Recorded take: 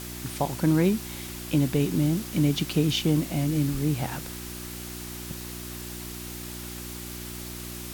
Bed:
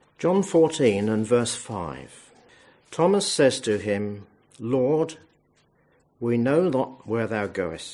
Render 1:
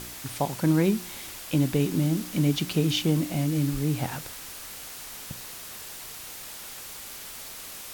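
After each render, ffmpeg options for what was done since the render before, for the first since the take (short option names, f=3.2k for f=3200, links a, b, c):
-af "bandreject=f=60:t=h:w=4,bandreject=f=120:t=h:w=4,bandreject=f=180:t=h:w=4,bandreject=f=240:t=h:w=4,bandreject=f=300:t=h:w=4,bandreject=f=360:t=h:w=4"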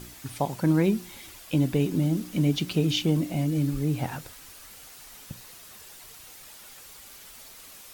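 -af "afftdn=nr=8:nf=-41"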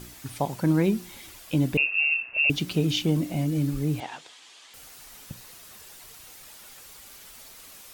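-filter_complex "[0:a]asettb=1/sr,asplit=3[a][b][c];[a]atrim=end=1.774[d];[b]atrim=start=1.77:end=2.5,asetpts=PTS-STARTPTS,afade=t=in:d=0.004:c=qsin,afade=t=out:st=0.726:d=0.004:c=qsin,lowpass=f=2.5k:t=q:w=0.5098,lowpass=f=2.5k:t=q:w=0.6013,lowpass=f=2.5k:t=q:w=0.9,lowpass=f=2.5k:t=q:w=2.563,afreqshift=-2900[e];[c]atrim=start=2.496[f];[d][e]acrossfade=d=0.004:c1=hsin:c2=qsin[g];[g][f]acrossfade=d=0.004:c1=qsin:c2=hsin,asettb=1/sr,asplit=3[h][i][j];[h]atrim=end=4.004[k];[i]atrim=start=4:end=4.74,asetpts=PTS-STARTPTS,afade=t=in:d=0.004:c=qsin,afade=t=out:st=0.736:d=0.004:c=qsin,highpass=480,equalizer=f=550:t=q:w=4:g=-6,equalizer=f=1.4k:t=q:w=4:g=-6,equalizer=f=3.3k:t=q:w=4:g=7,equalizer=f=5.6k:t=q:w=4:g=-3,lowpass=f=7.3k:w=0.5412,lowpass=f=7.3k:w=1.3066[l];[j]atrim=start=4.736[m];[k][l]acrossfade=d=0.004:c1=hsin:c2=qsin[n];[n][m]acrossfade=d=0.004:c1=qsin:c2=hsin"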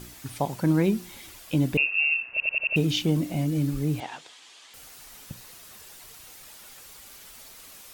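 -filter_complex "[0:a]asplit=6[a][b][c][d][e][f];[a]atrim=end=2.402[g];[b]atrim=start=2.308:end=2.402[h];[c]atrim=start=2.308:end=2.402[i];[d]atrim=start=2.308:end=2.402[j];[e]atrim=start=2.308:end=2.402[k];[f]atrim=start=2.758[l];[g][h]acrossfade=d=0.004:c1=hsin:c2=hsin[m];[m][i]acrossfade=d=0.004:c1=hsin:c2=hsin[n];[n][j]acrossfade=d=0.004:c1=hsin:c2=hsin[o];[o][k]acrossfade=d=0.004:c1=hsin:c2=hsin[p];[p][l]acrossfade=d=0.004:c1=hsin:c2=hsin"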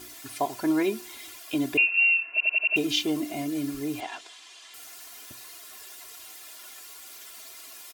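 -af "highpass=f=450:p=1,aecho=1:1:2.9:0.84"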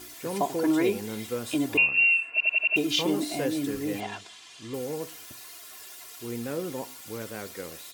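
-filter_complex "[1:a]volume=-12dB[a];[0:a][a]amix=inputs=2:normalize=0"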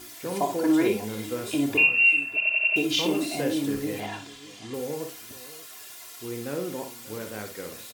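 -filter_complex "[0:a]asplit=2[a][b];[b]adelay=28,volume=-10.5dB[c];[a][c]amix=inputs=2:normalize=0,aecho=1:1:57|590:0.422|0.133"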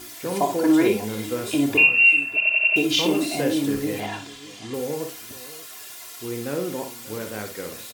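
-af "volume=4dB"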